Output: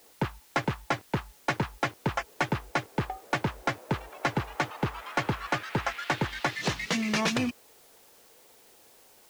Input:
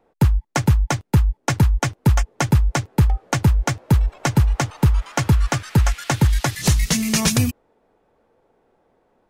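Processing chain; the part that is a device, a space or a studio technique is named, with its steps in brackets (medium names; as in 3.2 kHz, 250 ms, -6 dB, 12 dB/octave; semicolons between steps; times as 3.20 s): tape answering machine (band-pass 310–3100 Hz; saturation -18.5 dBFS, distortion -11 dB; wow and flutter; white noise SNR 26 dB)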